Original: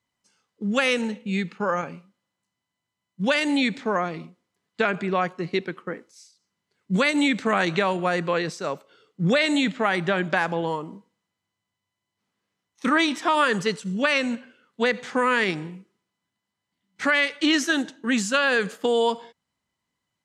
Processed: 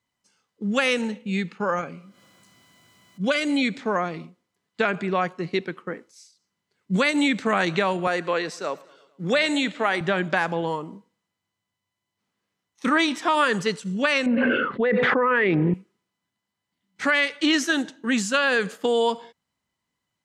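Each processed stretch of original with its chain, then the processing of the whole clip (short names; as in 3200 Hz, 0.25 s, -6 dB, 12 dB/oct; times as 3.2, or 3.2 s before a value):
1.79–3.77 upward compressor, threshold -33 dBFS + notch comb 900 Hz
8.07–10.01 HPF 260 Hz + feedback echo 0.112 s, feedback 58%, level -22.5 dB
14.26–15.74 formant sharpening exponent 1.5 + air absorption 420 m + fast leveller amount 100%
whole clip: dry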